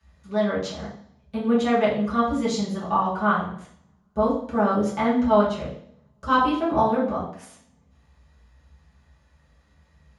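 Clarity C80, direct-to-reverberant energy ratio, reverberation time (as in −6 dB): 8.5 dB, −10.0 dB, 0.60 s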